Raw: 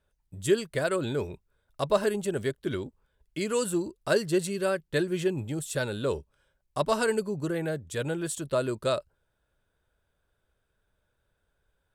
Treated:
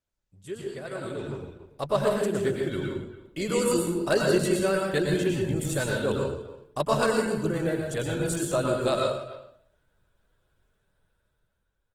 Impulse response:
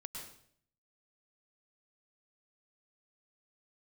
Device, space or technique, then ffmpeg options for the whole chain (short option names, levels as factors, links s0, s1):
speakerphone in a meeting room: -filter_complex "[1:a]atrim=start_sample=2205[s0];[0:a][s0]afir=irnorm=-1:irlink=0,asplit=2[s1][s2];[s2]adelay=290,highpass=300,lowpass=3400,asoftclip=type=hard:threshold=0.0596,volume=0.158[s3];[s1][s3]amix=inputs=2:normalize=0,dynaudnorm=f=310:g=9:m=5.96,volume=0.398" -ar 48000 -c:a libopus -b:a 16k